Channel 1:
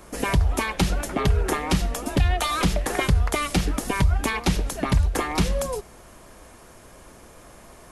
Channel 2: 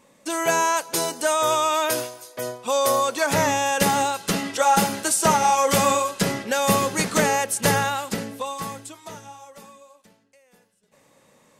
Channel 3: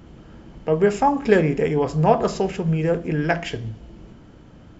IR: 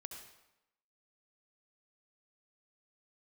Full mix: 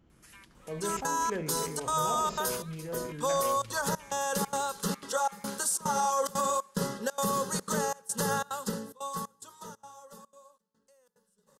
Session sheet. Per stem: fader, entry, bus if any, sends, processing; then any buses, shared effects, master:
-17.5 dB, 0.10 s, no send, inverse Chebyshev high-pass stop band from 350 Hz, stop band 60 dB; compressor 4:1, threshold -35 dBFS, peak gain reduction 10.5 dB
-4.0 dB, 0.55 s, send -21.5 dB, fixed phaser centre 460 Hz, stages 8; step gate "xxxxx.xxx..xxxx." 181 bpm -24 dB
-19.5 dB, 0.00 s, no send, sustainer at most 47 dB/s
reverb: on, RT60 0.90 s, pre-delay 62 ms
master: limiter -19.5 dBFS, peak gain reduction 8 dB

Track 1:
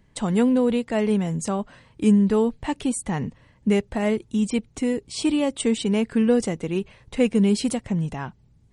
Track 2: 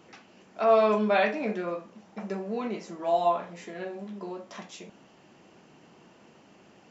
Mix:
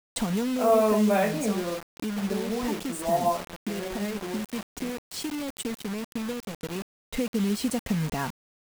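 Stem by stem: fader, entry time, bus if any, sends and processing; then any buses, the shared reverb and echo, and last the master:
+2.0 dB, 0.00 s, no send, comb 4.3 ms, depth 42%; compressor 8:1, threshold -25 dBFS, peak gain reduction 14.5 dB; auto duck -7 dB, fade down 1.35 s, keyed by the second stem
-2.0 dB, 0.00 s, no send, tilt -2.5 dB/oct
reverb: off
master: requantised 6-bit, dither none

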